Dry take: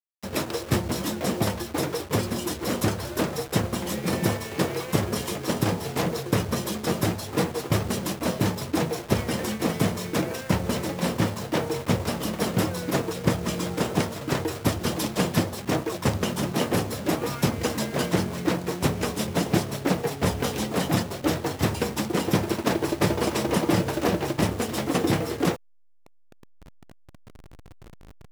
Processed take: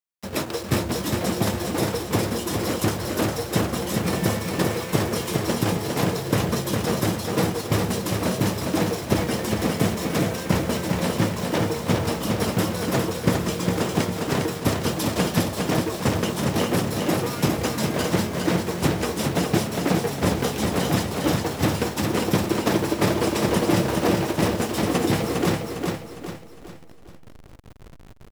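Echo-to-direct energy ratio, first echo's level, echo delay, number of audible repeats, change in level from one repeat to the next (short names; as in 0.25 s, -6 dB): -3.0 dB, -4.0 dB, 0.406 s, 5, -7.5 dB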